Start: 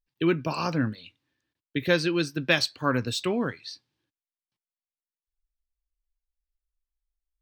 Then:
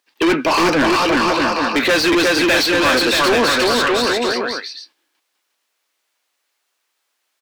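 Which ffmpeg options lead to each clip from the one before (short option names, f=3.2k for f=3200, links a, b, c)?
-filter_complex "[0:a]highpass=f=250:w=0.5412,highpass=f=250:w=1.3066,asplit=2[a][b];[b]aecho=0:1:360|630|832.5|984.4|1098:0.631|0.398|0.251|0.158|0.1[c];[a][c]amix=inputs=2:normalize=0,asplit=2[d][e];[e]highpass=f=720:p=1,volume=35dB,asoftclip=type=tanh:threshold=-7dB[f];[d][f]amix=inputs=2:normalize=0,lowpass=f=3.6k:p=1,volume=-6dB"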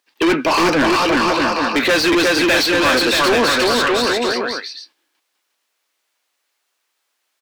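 -af anull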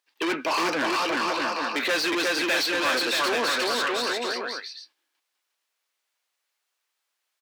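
-af "highpass=f=480:p=1,volume=-8dB"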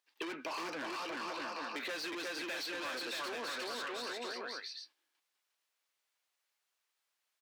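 -af "acompressor=threshold=-34dB:ratio=6,volume=-5dB"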